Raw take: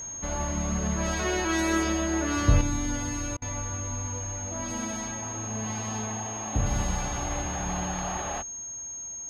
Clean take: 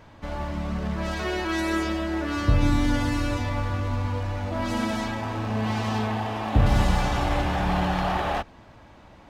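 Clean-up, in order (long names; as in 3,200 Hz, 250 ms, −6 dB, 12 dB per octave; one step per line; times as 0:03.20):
notch filter 6,500 Hz, Q 30
repair the gap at 0:03.37, 48 ms
level correction +7.5 dB, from 0:02.61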